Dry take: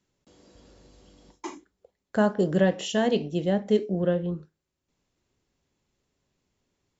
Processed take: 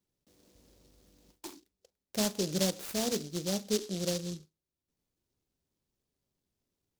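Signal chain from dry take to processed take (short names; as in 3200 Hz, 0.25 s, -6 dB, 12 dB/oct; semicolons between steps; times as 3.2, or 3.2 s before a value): noise-modulated delay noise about 4900 Hz, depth 0.2 ms; gain -8.5 dB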